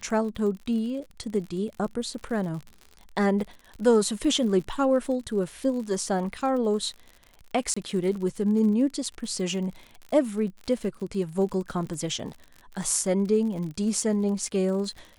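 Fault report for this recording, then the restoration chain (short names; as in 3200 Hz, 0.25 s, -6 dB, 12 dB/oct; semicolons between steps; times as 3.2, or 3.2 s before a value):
crackle 60/s -35 dBFS
7.74–7.76 gap 25 ms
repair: de-click; interpolate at 7.74, 25 ms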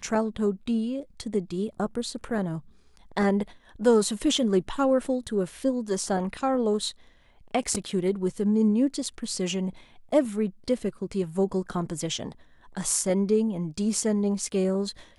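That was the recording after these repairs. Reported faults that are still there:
none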